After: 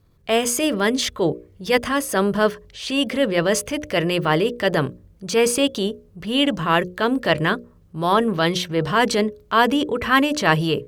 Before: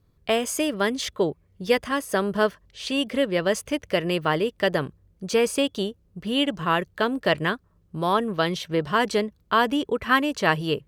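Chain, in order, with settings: transient shaper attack -6 dB, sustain +3 dB; hum notches 60/120/180/240/300/360/420/480/540/600 Hz; trim +6 dB

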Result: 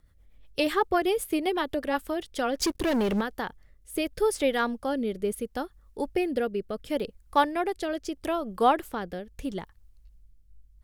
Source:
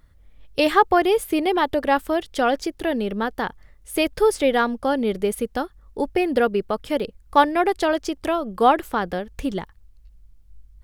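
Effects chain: rotary cabinet horn 8 Hz, later 0.75 Hz, at 2.03 s; 2.60–3.21 s: waveshaping leveller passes 3; treble shelf 6.5 kHz +6 dB; trim -5 dB

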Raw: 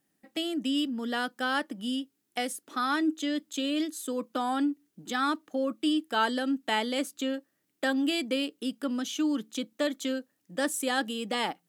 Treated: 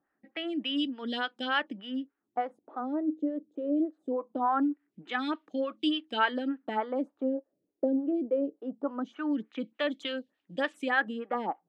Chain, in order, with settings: LFO low-pass sine 0.22 Hz 470–3400 Hz; lamp-driven phase shifter 3.4 Hz

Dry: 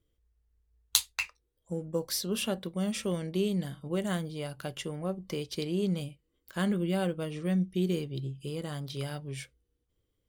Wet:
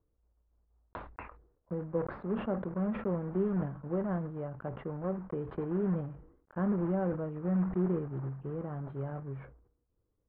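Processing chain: block-companded coder 3-bit; inverse Chebyshev low-pass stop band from 5.6 kHz, stop band 70 dB; decay stretcher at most 91 dB/s; trim -1.5 dB

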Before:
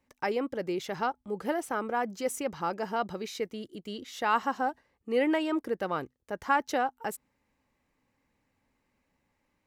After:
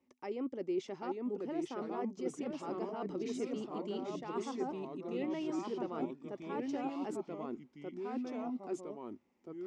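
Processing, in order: reverse; compression, threshold -36 dBFS, peak gain reduction 15.5 dB; reverse; ever faster or slower copies 761 ms, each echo -2 st, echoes 3; cabinet simulation 100–6800 Hz, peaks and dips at 120 Hz -9 dB, 250 Hz +9 dB, 370 Hz +9 dB, 1.6 kHz -10 dB, 4.1 kHz -6 dB; trim -4.5 dB

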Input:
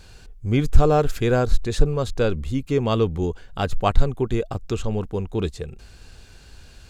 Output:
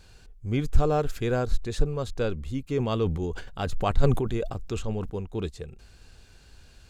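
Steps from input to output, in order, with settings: 2.68–5.10 s: decay stretcher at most 53 dB/s; trim -6.5 dB

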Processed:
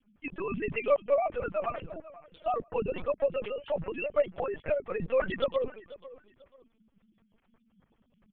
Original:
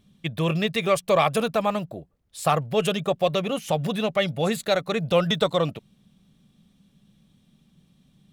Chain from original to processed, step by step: formants replaced by sine waves; 3.93–4.57 s: high-pass 220 Hz 12 dB/octave; harmonic-percussive split harmonic -4 dB; in parallel at 0 dB: compression 8:1, threshold -34 dBFS, peak gain reduction 20 dB; on the sum: short-mantissa float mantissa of 4-bit; on a send: feedback delay 491 ms, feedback 26%, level -18 dB; on the sum: LPC vocoder at 8 kHz pitch kept; trim -6.5 dB

